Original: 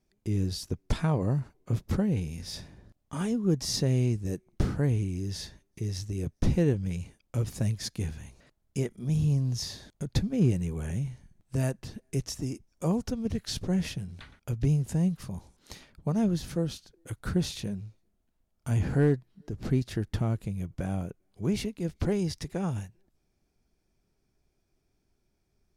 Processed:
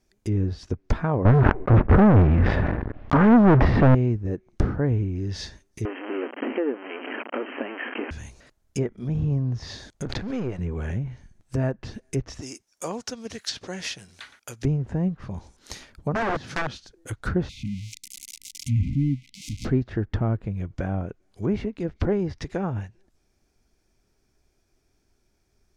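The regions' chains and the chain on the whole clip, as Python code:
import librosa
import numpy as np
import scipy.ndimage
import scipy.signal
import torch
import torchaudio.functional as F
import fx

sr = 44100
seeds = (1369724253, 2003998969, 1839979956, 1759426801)

y = fx.chain(x, sr, fx.lowpass(hz=2600.0, slope=24),
    fx.leveller(passes=5),
    fx.sustainer(db_per_s=37.0), at=(1.25, 3.95))
y = fx.chain(y, sr, fx.zero_step(step_db=-32.0),
    fx.brickwall_bandpass(low_hz=230.0, high_hz=3200.0),
    fx.band_squash(depth_pct=70), at=(5.85, 8.11))
y = fx.chain(y, sr, fx.halfwave_gain(db=-7.0),
    fx.low_shelf(hz=260.0, db=-11.0),
    fx.pre_swell(db_per_s=25.0), at=(10.05, 10.59))
y = fx.chain(y, sr, fx.highpass(hz=840.0, slope=6),
    fx.high_shelf(hz=5500.0, db=5.5), at=(12.41, 14.65))
y = fx.chain(y, sr, fx.highpass(hz=100.0, slope=24),
    fx.overflow_wrap(gain_db=25.0), at=(16.14, 16.74))
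y = fx.chain(y, sr, fx.crossing_spikes(level_db=-25.5),
    fx.brickwall_bandstop(low_hz=300.0, high_hz=2000.0), at=(17.49, 19.65))
y = fx.env_lowpass_down(y, sr, base_hz=1500.0, full_db=-27.0)
y = fx.graphic_eq_15(y, sr, hz=(160, 1600, 6300), db=(-6, 3, 4))
y = F.gain(torch.from_numpy(y), 6.0).numpy()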